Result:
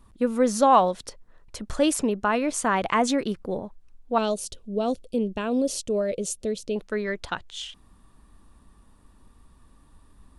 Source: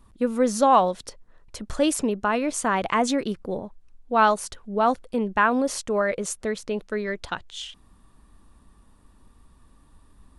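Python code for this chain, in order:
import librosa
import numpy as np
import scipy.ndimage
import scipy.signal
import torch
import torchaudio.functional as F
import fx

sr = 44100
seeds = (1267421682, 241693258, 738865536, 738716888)

y = fx.band_shelf(x, sr, hz=1300.0, db=-16.0, octaves=1.7, at=(4.18, 6.76))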